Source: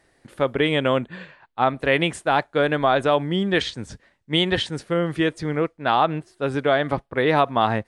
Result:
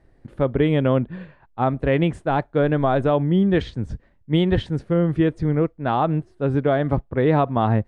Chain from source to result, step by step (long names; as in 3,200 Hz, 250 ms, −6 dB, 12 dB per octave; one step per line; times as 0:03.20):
spectral tilt −4 dB per octave
level −3.5 dB